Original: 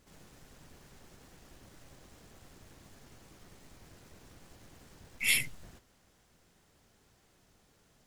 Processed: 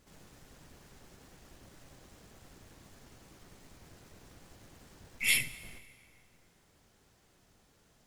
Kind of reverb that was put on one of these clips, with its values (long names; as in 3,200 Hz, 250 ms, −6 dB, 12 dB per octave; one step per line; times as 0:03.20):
dense smooth reverb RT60 2.5 s, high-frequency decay 0.65×, DRR 14 dB